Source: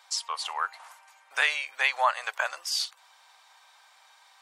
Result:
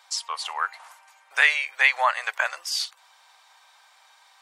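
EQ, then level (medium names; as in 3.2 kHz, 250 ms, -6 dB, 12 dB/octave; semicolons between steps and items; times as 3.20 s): dynamic bell 2 kHz, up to +7 dB, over -41 dBFS, Q 2.2; peaking EQ 260 Hz -11 dB 0.23 oct; +1.5 dB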